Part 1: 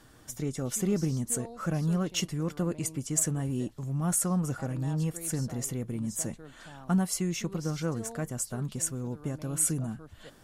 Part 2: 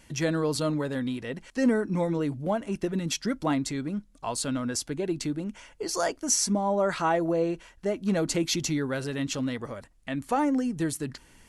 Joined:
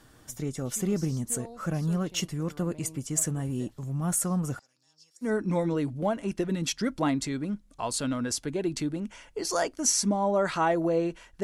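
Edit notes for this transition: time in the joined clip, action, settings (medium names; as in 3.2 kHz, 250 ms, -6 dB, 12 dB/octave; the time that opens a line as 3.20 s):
part 1
4.59–5.33 s: band-pass filter 5.2 kHz, Q 6.6
5.27 s: go over to part 2 from 1.71 s, crossfade 0.12 s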